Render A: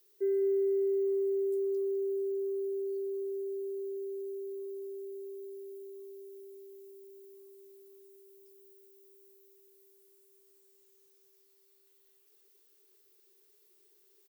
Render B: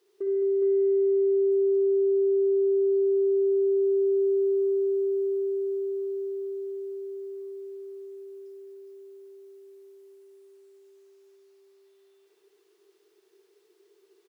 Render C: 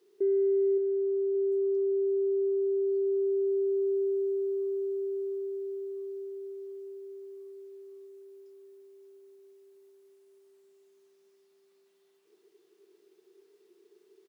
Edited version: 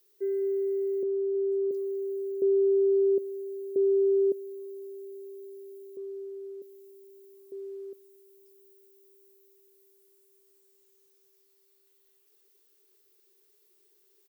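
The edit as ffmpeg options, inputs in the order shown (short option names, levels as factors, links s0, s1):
-filter_complex "[2:a]asplit=2[s0][s1];[1:a]asplit=3[s2][s3][s4];[0:a]asplit=6[s5][s6][s7][s8][s9][s10];[s5]atrim=end=1.032[s11];[s0]atrim=start=1.028:end=1.712[s12];[s6]atrim=start=1.708:end=2.422[s13];[s2]atrim=start=2.418:end=3.182[s14];[s7]atrim=start=3.178:end=3.762[s15];[s3]atrim=start=3.758:end=4.322[s16];[s8]atrim=start=4.318:end=5.972[s17];[s1]atrim=start=5.968:end=6.622[s18];[s9]atrim=start=6.618:end=7.522[s19];[s4]atrim=start=7.518:end=7.932[s20];[s10]atrim=start=7.928[s21];[s11][s12]acrossfade=d=0.004:c1=hsin:c2=hsin[s22];[s22][s13]acrossfade=d=0.004:c1=hsin:c2=hsin[s23];[s23][s14]acrossfade=d=0.004:c1=hsin:c2=hsin[s24];[s24][s15]acrossfade=d=0.004:c1=hsin:c2=hsin[s25];[s25][s16]acrossfade=d=0.004:c1=hsin:c2=hsin[s26];[s26][s17]acrossfade=d=0.004:c1=hsin:c2=hsin[s27];[s27][s18]acrossfade=d=0.004:c1=hsin:c2=hsin[s28];[s28][s19]acrossfade=d=0.004:c1=hsin:c2=hsin[s29];[s29][s20]acrossfade=d=0.004:c1=hsin:c2=hsin[s30];[s30][s21]acrossfade=d=0.004:c1=hsin:c2=hsin"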